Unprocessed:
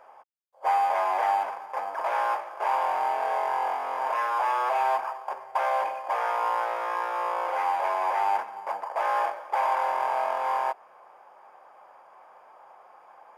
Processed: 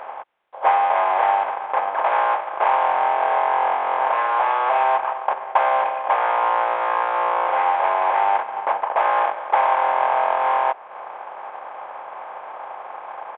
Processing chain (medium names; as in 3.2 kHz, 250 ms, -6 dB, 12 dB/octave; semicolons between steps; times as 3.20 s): spectral levelling over time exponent 0.6; transient shaper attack +4 dB, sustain -6 dB; resampled via 8 kHz; trim +4 dB